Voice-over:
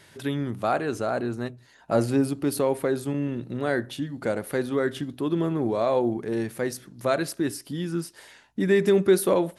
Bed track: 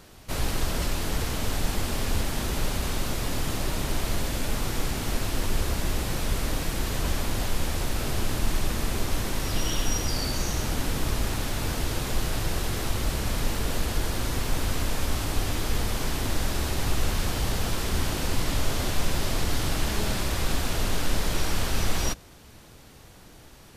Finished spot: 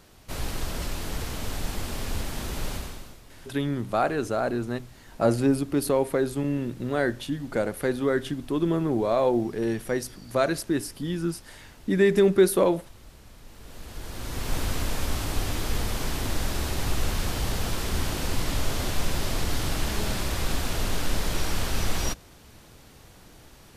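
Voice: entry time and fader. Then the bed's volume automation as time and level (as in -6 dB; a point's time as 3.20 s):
3.30 s, +0.5 dB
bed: 2.75 s -4 dB
3.23 s -22 dB
13.44 s -22 dB
14.54 s -1 dB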